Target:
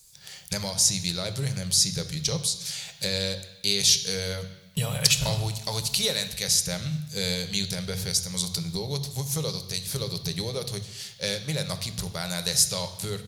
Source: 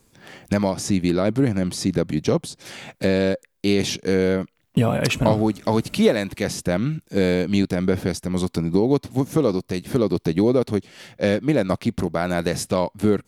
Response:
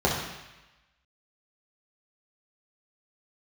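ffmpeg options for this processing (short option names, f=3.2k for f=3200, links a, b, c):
-filter_complex "[0:a]firequalizer=gain_entry='entry(120,0);entry(270,-24);entry(430,-13);entry(4000,13)':delay=0.05:min_phase=1,asplit=2[a][b];[1:a]atrim=start_sample=2205,highshelf=f=4.4k:g=8[c];[b][c]afir=irnorm=-1:irlink=0,volume=-22dB[d];[a][d]amix=inputs=2:normalize=0,volume=-4.5dB"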